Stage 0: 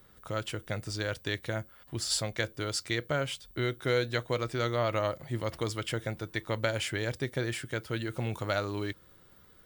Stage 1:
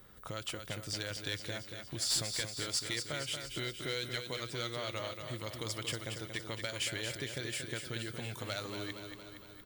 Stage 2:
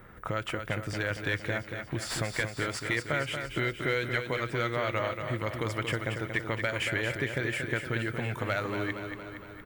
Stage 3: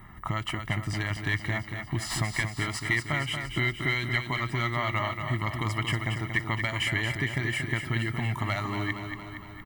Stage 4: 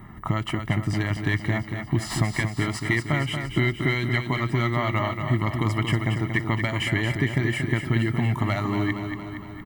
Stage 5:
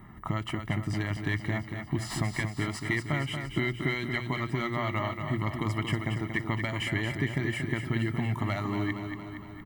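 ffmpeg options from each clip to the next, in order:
-filter_complex "[0:a]acrossover=split=2500[s0][s1];[s0]acompressor=threshold=0.00794:ratio=4[s2];[s2][s1]amix=inputs=2:normalize=0,asoftclip=type=hard:threshold=0.0398,aecho=1:1:232|464|696|928|1160|1392|1624|1856:0.447|0.264|0.155|0.0917|0.0541|0.0319|0.0188|0.0111,volume=1.12"
-af "highshelf=f=2900:t=q:w=1.5:g=-12.5,volume=2.82"
-af "aecho=1:1:1:0.94"
-af "equalizer=f=250:w=0.39:g=9"
-af "bandreject=f=60:t=h:w=6,bandreject=f=120:t=h:w=6,volume=0.531"

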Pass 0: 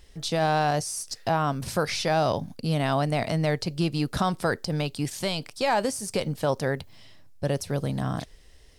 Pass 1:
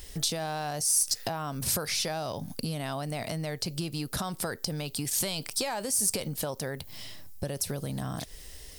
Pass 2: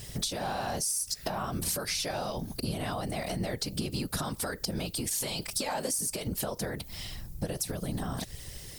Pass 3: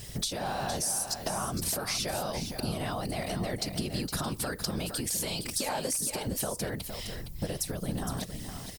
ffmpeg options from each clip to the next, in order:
-filter_complex "[0:a]asplit=2[s0][s1];[s1]alimiter=limit=0.0631:level=0:latency=1:release=15,volume=1.06[s2];[s0][s2]amix=inputs=2:normalize=0,acompressor=threshold=0.0316:ratio=10,aemphasis=mode=production:type=50fm"
-af "acompressor=threshold=0.0282:ratio=6,afftfilt=real='hypot(re,im)*cos(2*PI*random(0))':imag='hypot(re,im)*sin(2*PI*random(1))':win_size=512:overlap=0.75,volume=2.66"
-af "aecho=1:1:463:0.376"

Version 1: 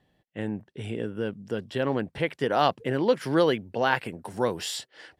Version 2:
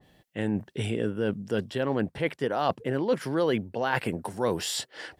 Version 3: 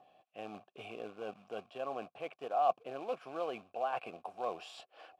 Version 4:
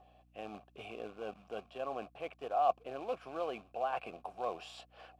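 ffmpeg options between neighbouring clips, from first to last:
-af "highshelf=f=3700:g=6.5,areverse,acompressor=threshold=0.0251:ratio=4,areverse,adynamicequalizer=threshold=0.00224:dfrequency=1800:dqfactor=0.7:tfrequency=1800:tqfactor=0.7:attack=5:release=100:ratio=0.375:range=3.5:mode=cutabove:tftype=highshelf,volume=2.51"
-filter_complex "[0:a]acrusher=bits=3:mode=log:mix=0:aa=0.000001,acompressor=mode=upward:threshold=0.00631:ratio=2.5,asplit=3[s0][s1][s2];[s0]bandpass=f=730:t=q:w=8,volume=1[s3];[s1]bandpass=f=1090:t=q:w=8,volume=0.501[s4];[s2]bandpass=f=2440:t=q:w=8,volume=0.355[s5];[s3][s4][s5]amix=inputs=3:normalize=0,volume=1.12"
-af "aeval=exprs='val(0)+0.000501*(sin(2*PI*60*n/s)+sin(2*PI*2*60*n/s)/2+sin(2*PI*3*60*n/s)/3+sin(2*PI*4*60*n/s)/4+sin(2*PI*5*60*n/s)/5)':c=same"

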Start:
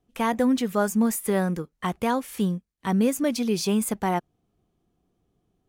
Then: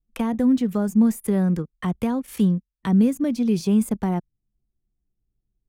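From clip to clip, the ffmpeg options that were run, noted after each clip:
-filter_complex "[0:a]acrossover=split=900[s0][s1];[s1]alimiter=level_in=1.19:limit=0.0631:level=0:latency=1:release=185,volume=0.841[s2];[s0][s2]amix=inputs=2:normalize=0,anlmdn=0.158,acrossover=split=280[s3][s4];[s4]acompressor=threshold=0.00794:ratio=2.5[s5];[s3][s5]amix=inputs=2:normalize=0,volume=2.24"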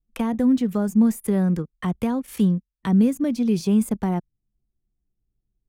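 -af anull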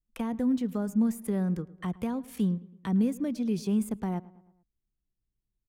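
-filter_complex "[0:a]asplit=2[s0][s1];[s1]adelay=109,lowpass=f=2800:p=1,volume=0.1,asplit=2[s2][s3];[s3]adelay=109,lowpass=f=2800:p=1,volume=0.52,asplit=2[s4][s5];[s5]adelay=109,lowpass=f=2800:p=1,volume=0.52,asplit=2[s6][s7];[s7]adelay=109,lowpass=f=2800:p=1,volume=0.52[s8];[s0][s2][s4][s6][s8]amix=inputs=5:normalize=0,volume=0.398"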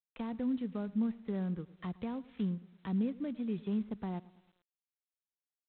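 -af "volume=0.447" -ar 8000 -c:a adpcm_g726 -b:a 24k

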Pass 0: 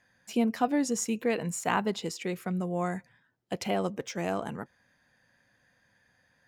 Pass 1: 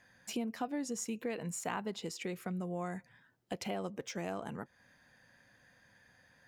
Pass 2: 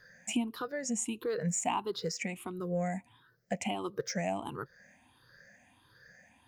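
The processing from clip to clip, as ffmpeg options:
-af "acompressor=threshold=0.00631:ratio=2.5,volume=1.41"
-af "afftfilt=real='re*pow(10,19/40*sin(2*PI*(0.59*log(max(b,1)*sr/1024/100)/log(2)-(1.5)*(pts-256)/sr)))':imag='im*pow(10,19/40*sin(2*PI*(0.59*log(max(b,1)*sr/1024/100)/log(2)-(1.5)*(pts-256)/sr)))':win_size=1024:overlap=0.75"

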